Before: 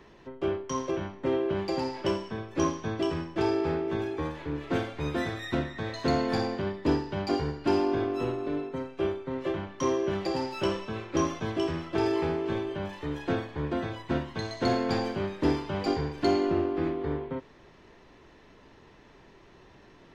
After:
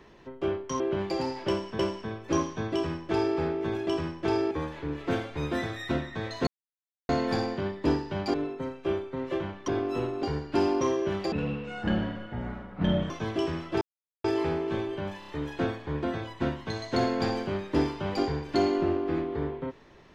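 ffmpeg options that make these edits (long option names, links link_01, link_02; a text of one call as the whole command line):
ffmpeg -i in.wav -filter_complex "[0:a]asplit=16[link_01][link_02][link_03][link_04][link_05][link_06][link_07][link_08][link_09][link_10][link_11][link_12][link_13][link_14][link_15][link_16];[link_01]atrim=end=0.802[link_17];[link_02]atrim=start=1.378:end=2.372[link_18];[link_03]atrim=start=2.058:end=4.142[link_19];[link_04]atrim=start=2.998:end=3.642[link_20];[link_05]atrim=start=4.138:end=6.1,asetpts=PTS-STARTPTS,afade=type=out:start_time=1.958:duration=0.004:curve=hsin,apad=pad_dur=0.62[link_21];[link_06]atrim=start=6.1:end=7.352,asetpts=PTS-STARTPTS,afade=type=in:duration=0.004:curve=hsin[link_22];[link_07]atrim=start=8.478:end=9.822[link_23];[link_08]atrim=start=7.928:end=8.482[link_24];[link_09]atrim=start=7.348:end=7.932[link_25];[link_10]atrim=start=9.818:end=10.334[link_26];[link_11]atrim=start=10.33:end=11.31,asetpts=PTS-STARTPTS,asetrate=24255,aresample=44100,atrim=end_sample=78578,asetpts=PTS-STARTPTS[link_27];[link_12]atrim=start=11.306:end=12.02,asetpts=PTS-STARTPTS,afade=type=out:start_time=0.71:duration=0.004:curve=hsin,apad=pad_dur=0.43[link_28];[link_13]atrim=start=12.02:end=13.002,asetpts=PTS-STARTPTS,afade=type=in:duration=0.004:curve=hsin[link_29];[link_14]atrim=start=12.968:end=13.002[link_30];[link_15]atrim=start=12.968:end=13.002[link_31];[link_16]atrim=start=12.968[link_32];[link_17][link_18]acrossfade=duration=0.004:curve1=hsin:curve2=hsin[link_33];[link_33][link_19]acrossfade=duration=0.004:curve1=hsin:curve2=hsin[link_34];[link_34][link_20]acrossfade=duration=0.004:curve1=hsin:curve2=hsin[link_35];[link_21][link_22]concat=n=2:v=0:a=1[link_36];[link_35][link_36]acrossfade=duration=0.004:curve1=hsin:curve2=hsin[link_37];[link_37][link_23]acrossfade=duration=0.004:curve1=hsin:curve2=hsin[link_38];[link_38][link_24]acrossfade=duration=0.004:curve1=hsin:curve2=hsin[link_39];[link_39][link_25]acrossfade=duration=0.004:curve1=hsin:curve2=hsin[link_40];[link_40][link_26]acrossfade=duration=0.004:curve1=hsin:curve2=hsin[link_41];[link_41][link_27]acrossfade=duration=0.004:curve1=hsin:curve2=hsin[link_42];[link_28][link_29]concat=n=2:v=0:a=1[link_43];[link_42][link_43]acrossfade=duration=0.004:curve1=hsin:curve2=hsin[link_44];[link_44][link_30]acrossfade=duration=0.004:curve1=hsin:curve2=hsin[link_45];[link_45][link_31]acrossfade=duration=0.004:curve1=hsin:curve2=hsin[link_46];[link_46][link_32]acrossfade=duration=0.004:curve1=hsin:curve2=hsin" out.wav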